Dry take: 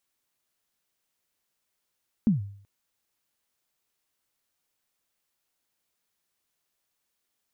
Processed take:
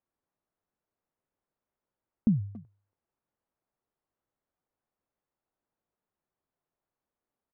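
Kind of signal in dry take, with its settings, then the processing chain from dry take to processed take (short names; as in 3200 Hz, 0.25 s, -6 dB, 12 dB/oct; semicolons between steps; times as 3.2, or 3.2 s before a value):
kick drum length 0.38 s, from 240 Hz, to 100 Hz, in 0.138 s, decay 0.57 s, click off, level -15 dB
LPF 1000 Hz 12 dB/oct; dynamic EQ 690 Hz, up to -4 dB, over -43 dBFS, Q 1.1; speakerphone echo 0.28 s, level -14 dB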